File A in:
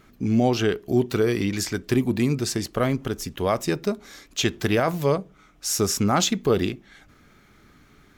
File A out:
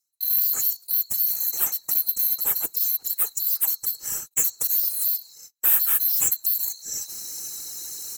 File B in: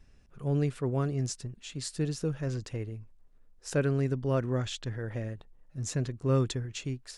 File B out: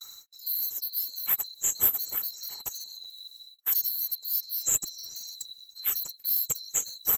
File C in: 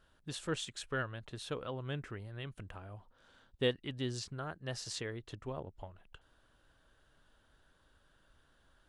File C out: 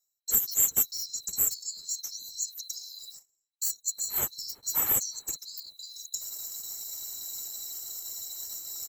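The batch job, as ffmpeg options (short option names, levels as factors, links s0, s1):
-filter_complex "[0:a]afftfilt=real='real(if(lt(b,736),b+184*(1-2*mod(floor(b/184),2)),b),0)':imag='imag(if(lt(b,736),b+184*(1-2*mod(floor(b/184),2)),b),0)':win_size=2048:overlap=0.75,areverse,acompressor=mode=upward:threshold=0.0501:ratio=2.5,areverse,volume=15,asoftclip=hard,volume=0.0668,adynamicequalizer=threshold=0.00158:dfrequency=130:dqfactor=0.78:tfrequency=130:tqfactor=0.78:attack=5:release=100:ratio=0.375:range=2:mode=boostabove:tftype=bell,aecho=1:1:2.3:0.39,asplit=2[s0][s1];[s1]adelay=373,lowpass=f=1400:p=1,volume=0.0841,asplit=2[s2][s3];[s3]adelay=373,lowpass=f=1400:p=1,volume=0.2[s4];[s0][s2][s4]amix=inputs=3:normalize=0,afftfilt=real='hypot(re,im)*cos(2*PI*random(0))':imag='hypot(re,im)*sin(2*PI*random(1))':win_size=512:overlap=0.75,acompressor=threshold=0.00891:ratio=2.5,agate=range=0.02:threshold=0.00282:ratio=16:detection=peak,aexciter=amount=15.3:drive=8.5:freq=7000,highshelf=f=2900:g=-9,asoftclip=type=tanh:threshold=0.178,volume=2.51"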